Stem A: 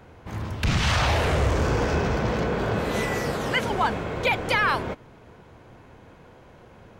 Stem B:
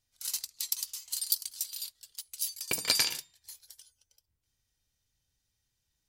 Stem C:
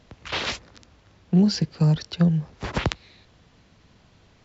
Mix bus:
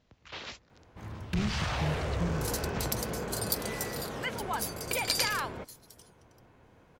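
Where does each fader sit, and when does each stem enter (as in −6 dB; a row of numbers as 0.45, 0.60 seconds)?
−10.5, −3.0, −14.5 decibels; 0.70, 2.20, 0.00 seconds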